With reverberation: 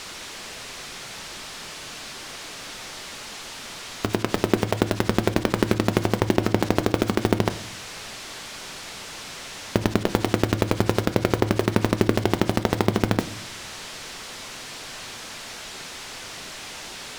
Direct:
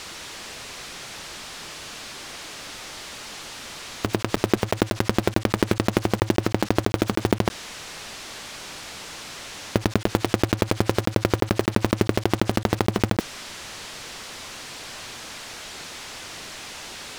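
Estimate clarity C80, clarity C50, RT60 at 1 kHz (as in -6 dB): 19.0 dB, 16.0 dB, 0.60 s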